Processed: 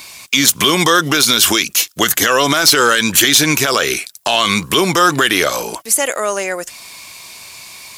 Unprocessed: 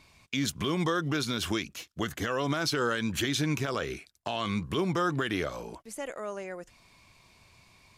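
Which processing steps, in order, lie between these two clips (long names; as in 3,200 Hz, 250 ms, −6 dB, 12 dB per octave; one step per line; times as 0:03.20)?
RIAA equalisation recording
soft clipping −16.5 dBFS, distortion −17 dB
boost into a limiter +20.5 dB
level −1 dB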